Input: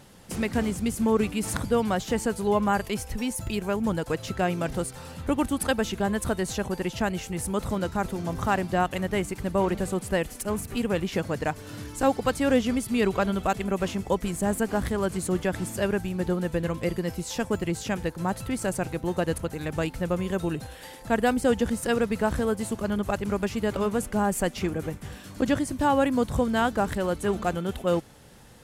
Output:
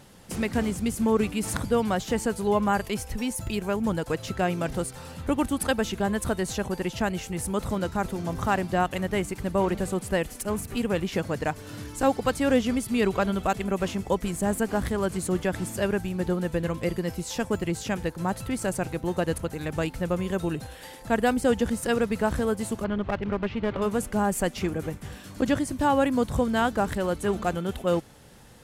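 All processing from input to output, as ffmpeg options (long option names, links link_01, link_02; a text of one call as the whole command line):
ffmpeg -i in.wav -filter_complex "[0:a]asettb=1/sr,asplit=3[link_01][link_02][link_03];[link_01]atrim=end=22.844[link_04];[link_02]atrim=start=22.84:end=23.82,asetpts=PTS-STARTPTS,afade=type=in:duration=0.004:curve=qsin,afade=type=out:start_time=0.976:duration=0.004:curve=qsin,lowpass=frequency=3500:width=0.5412,lowpass=frequency=3500:width=1.3066,aeval=exprs='clip(val(0),-1,0.0398)':channel_layout=same[link_05];[link_03]atrim=start=23.816[link_06];[link_04][link_05]acrossfade=duration=0.004:curve1=hsin:curve2=qsin[link_07];[link_07][link_06]acrossfade=duration=0.004:curve1=qsin:curve2=hsin" out.wav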